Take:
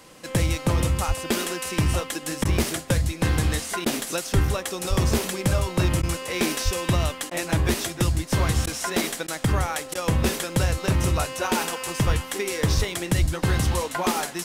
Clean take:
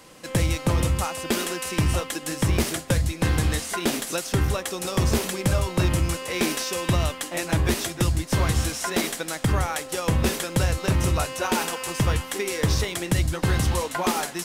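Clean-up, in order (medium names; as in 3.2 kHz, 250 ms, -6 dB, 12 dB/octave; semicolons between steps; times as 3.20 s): de-plosive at 1.07/4.34/4.89/6.64/12.06/12.76/13.20 s; interpolate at 2.44/3.85/6.02/7.30/8.66/9.27/9.94 s, 10 ms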